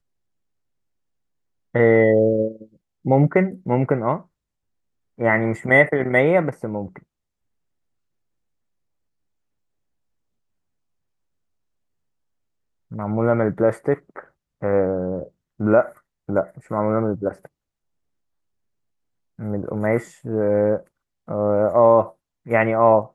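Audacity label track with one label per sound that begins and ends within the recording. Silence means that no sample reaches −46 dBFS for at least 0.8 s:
1.740000	4.240000	sound
5.180000	7.030000	sound
12.910000	17.470000	sound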